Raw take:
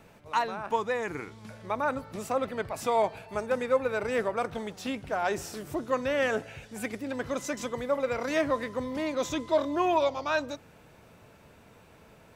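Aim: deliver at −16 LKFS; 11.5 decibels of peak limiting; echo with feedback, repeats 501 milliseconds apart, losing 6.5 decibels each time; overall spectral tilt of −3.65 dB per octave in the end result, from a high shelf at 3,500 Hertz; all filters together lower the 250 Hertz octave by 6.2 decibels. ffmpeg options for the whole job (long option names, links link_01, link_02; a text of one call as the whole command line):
ffmpeg -i in.wav -af "equalizer=frequency=250:width_type=o:gain=-8,highshelf=frequency=3500:gain=9,alimiter=limit=-24dB:level=0:latency=1,aecho=1:1:501|1002|1503|2004|2505|3006:0.473|0.222|0.105|0.0491|0.0231|0.0109,volume=18dB" out.wav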